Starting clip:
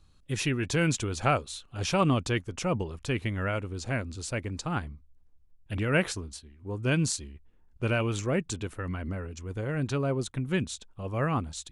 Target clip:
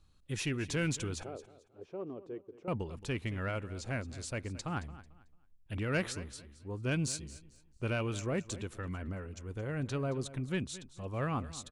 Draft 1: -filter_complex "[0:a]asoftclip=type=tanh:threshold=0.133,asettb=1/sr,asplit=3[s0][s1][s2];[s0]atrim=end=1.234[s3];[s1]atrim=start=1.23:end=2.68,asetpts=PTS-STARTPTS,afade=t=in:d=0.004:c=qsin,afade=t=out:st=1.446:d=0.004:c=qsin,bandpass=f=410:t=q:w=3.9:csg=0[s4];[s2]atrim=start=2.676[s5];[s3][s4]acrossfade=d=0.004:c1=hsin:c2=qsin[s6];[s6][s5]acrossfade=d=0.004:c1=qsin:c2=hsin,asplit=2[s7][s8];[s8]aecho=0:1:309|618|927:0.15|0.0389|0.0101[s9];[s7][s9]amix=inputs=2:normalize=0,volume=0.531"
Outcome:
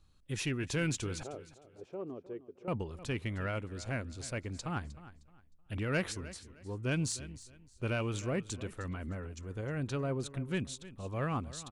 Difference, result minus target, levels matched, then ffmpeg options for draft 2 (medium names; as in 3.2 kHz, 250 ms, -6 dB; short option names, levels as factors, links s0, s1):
echo 87 ms late
-filter_complex "[0:a]asoftclip=type=tanh:threshold=0.133,asettb=1/sr,asplit=3[s0][s1][s2];[s0]atrim=end=1.234[s3];[s1]atrim=start=1.23:end=2.68,asetpts=PTS-STARTPTS,afade=t=in:d=0.004:c=qsin,afade=t=out:st=1.446:d=0.004:c=qsin,bandpass=f=410:t=q:w=3.9:csg=0[s4];[s2]atrim=start=2.676[s5];[s3][s4]acrossfade=d=0.004:c1=hsin:c2=qsin[s6];[s6][s5]acrossfade=d=0.004:c1=qsin:c2=hsin,asplit=2[s7][s8];[s8]aecho=0:1:222|444|666:0.15|0.0389|0.0101[s9];[s7][s9]amix=inputs=2:normalize=0,volume=0.531"